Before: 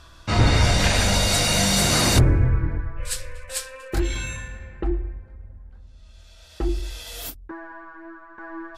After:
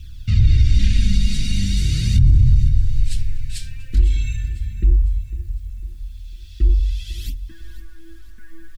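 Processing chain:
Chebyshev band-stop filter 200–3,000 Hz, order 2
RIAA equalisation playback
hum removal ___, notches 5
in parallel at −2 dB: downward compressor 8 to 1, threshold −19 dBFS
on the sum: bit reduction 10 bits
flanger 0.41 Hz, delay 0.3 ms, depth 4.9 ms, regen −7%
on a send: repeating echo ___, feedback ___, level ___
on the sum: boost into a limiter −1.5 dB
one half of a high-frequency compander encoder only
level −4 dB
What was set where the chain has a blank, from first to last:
161.4 Hz, 501 ms, 46%, −16.5 dB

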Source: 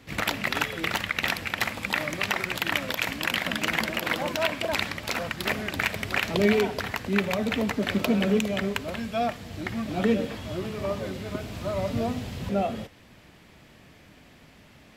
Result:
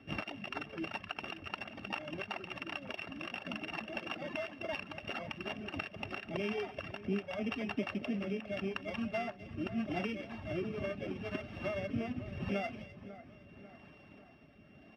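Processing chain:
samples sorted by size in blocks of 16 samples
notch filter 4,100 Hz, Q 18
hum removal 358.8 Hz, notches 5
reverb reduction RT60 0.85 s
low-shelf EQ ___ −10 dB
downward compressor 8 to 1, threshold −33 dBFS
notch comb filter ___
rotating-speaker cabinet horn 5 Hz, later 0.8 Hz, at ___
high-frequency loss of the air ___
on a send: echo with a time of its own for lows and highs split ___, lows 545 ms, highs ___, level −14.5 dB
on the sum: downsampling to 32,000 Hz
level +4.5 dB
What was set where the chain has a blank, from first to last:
220 Hz, 490 Hz, 0:05.60, 310 metres, 2,000 Hz, 255 ms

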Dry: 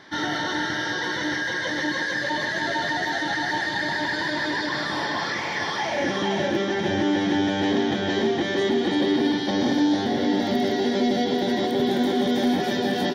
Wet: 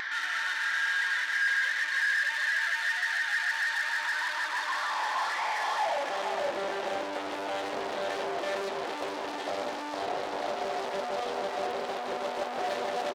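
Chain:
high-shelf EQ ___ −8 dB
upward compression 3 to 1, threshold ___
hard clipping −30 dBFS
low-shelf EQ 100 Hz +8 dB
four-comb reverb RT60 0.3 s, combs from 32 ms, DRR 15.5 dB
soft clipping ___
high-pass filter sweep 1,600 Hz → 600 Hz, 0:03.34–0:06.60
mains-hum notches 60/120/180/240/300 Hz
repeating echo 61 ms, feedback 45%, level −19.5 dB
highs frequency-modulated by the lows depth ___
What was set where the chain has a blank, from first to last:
3,800 Hz, −30 dBFS, −28 dBFS, 0.66 ms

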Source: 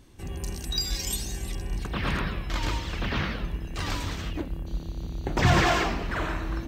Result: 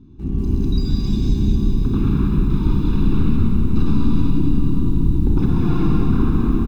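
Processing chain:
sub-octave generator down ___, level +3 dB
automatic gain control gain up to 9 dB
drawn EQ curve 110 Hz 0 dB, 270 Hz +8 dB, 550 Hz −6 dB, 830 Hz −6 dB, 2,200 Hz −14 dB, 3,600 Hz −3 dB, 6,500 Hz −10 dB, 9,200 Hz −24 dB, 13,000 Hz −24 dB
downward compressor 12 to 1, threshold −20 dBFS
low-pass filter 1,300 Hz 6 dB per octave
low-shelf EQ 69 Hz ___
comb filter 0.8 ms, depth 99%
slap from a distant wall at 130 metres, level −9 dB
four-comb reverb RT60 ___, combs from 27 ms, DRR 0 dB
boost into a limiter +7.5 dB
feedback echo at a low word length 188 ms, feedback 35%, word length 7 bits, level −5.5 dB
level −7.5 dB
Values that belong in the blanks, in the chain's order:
1 octave, −3 dB, 2.6 s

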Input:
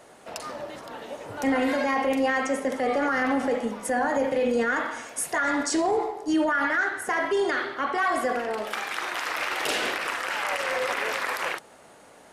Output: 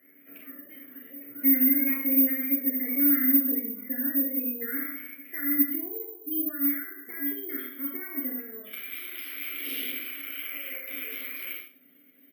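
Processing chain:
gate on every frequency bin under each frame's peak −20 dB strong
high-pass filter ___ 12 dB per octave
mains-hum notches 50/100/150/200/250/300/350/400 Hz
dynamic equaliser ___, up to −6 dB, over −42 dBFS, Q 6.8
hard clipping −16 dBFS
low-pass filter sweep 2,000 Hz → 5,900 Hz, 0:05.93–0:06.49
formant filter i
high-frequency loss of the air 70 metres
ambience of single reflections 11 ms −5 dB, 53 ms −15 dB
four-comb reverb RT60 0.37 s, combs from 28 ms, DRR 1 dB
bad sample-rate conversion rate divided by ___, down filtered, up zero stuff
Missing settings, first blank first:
48 Hz, 1,800 Hz, 3×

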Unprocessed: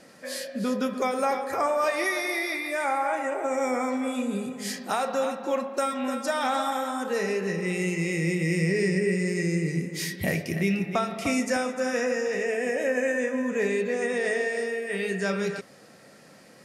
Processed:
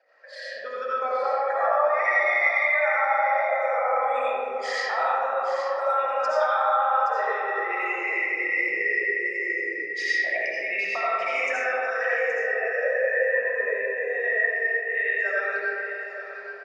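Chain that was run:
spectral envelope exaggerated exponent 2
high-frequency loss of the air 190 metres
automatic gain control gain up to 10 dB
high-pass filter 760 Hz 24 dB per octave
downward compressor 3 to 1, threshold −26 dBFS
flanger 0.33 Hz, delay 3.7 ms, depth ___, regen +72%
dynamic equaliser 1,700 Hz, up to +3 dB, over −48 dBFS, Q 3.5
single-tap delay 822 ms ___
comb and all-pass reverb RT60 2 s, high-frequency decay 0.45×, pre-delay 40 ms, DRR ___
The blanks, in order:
7.5 ms, −10 dB, −7.5 dB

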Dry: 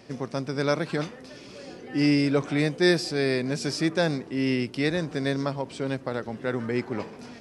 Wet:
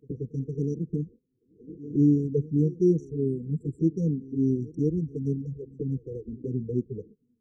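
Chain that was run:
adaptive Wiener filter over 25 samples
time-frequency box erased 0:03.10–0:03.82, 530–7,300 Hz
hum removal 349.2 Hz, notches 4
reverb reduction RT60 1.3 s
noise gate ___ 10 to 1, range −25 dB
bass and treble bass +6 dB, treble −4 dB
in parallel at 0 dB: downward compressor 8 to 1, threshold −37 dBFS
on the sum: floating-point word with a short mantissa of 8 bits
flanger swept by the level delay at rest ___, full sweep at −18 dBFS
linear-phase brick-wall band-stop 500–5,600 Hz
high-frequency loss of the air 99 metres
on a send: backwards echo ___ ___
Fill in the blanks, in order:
−44 dBFS, 10.8 ms, 180 ms, −21 dB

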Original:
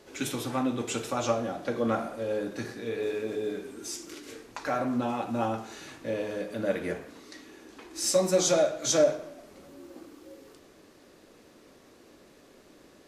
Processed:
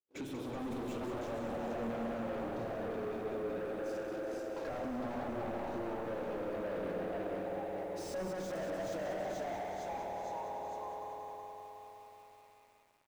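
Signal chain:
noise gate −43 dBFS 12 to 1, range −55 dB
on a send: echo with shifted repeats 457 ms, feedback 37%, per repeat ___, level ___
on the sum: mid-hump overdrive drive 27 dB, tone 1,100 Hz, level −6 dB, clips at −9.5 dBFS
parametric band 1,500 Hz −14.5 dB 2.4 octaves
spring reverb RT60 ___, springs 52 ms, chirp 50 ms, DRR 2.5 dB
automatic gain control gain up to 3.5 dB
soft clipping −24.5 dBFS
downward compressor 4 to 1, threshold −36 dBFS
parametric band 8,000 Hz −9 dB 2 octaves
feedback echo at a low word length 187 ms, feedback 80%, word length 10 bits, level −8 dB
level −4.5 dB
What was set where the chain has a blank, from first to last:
+110 Hz, −5.5 dB, 3.5 s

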